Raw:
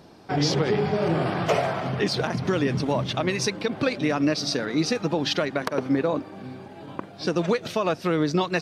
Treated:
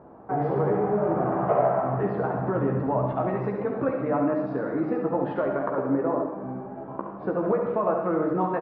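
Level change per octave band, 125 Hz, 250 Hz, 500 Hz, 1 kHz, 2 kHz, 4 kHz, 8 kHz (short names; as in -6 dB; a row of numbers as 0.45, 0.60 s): -2.5 dB, -1.5 dB, +1.0 dB, +2.0 dB, -9.0 dB, under -30 dB, under -40 dB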